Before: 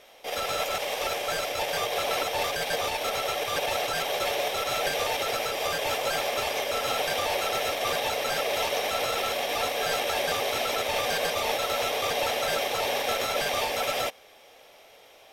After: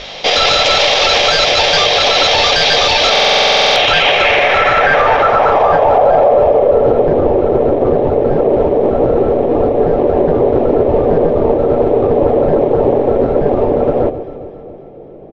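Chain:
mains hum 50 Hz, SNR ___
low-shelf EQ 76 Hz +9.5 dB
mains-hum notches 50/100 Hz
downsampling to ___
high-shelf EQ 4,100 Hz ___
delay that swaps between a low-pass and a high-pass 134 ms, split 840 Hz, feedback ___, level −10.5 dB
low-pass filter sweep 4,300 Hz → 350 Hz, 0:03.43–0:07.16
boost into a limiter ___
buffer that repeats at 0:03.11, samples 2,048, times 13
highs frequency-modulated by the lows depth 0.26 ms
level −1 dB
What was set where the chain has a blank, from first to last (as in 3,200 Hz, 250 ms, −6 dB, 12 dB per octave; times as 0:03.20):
34 dB, 16,000 Hz, +3.5 dB, 73%, +22.5 dB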